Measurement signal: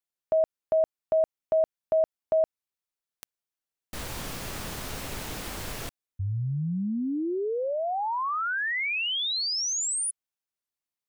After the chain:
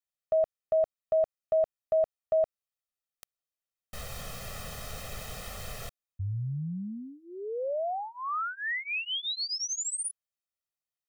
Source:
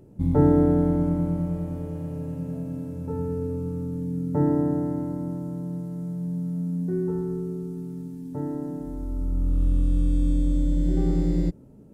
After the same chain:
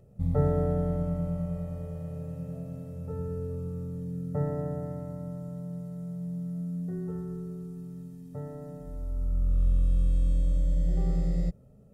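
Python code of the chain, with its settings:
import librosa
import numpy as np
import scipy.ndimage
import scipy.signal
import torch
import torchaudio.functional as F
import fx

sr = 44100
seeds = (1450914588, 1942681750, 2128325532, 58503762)

y = x + 0.94 * np.pad(x, (int(1.6 * sr / 1000.0), 0))[:len(x)]
y = y * 10.0 ** (-7.5 / 20.0)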